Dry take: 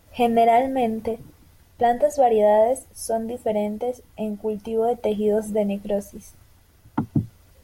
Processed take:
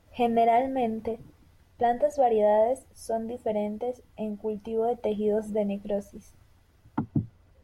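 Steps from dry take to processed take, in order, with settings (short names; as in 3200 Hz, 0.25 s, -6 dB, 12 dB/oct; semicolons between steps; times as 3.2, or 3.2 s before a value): LPF 4000 Hz 6 dB/oct, from 7 s 1700 Hz; gain -5 dB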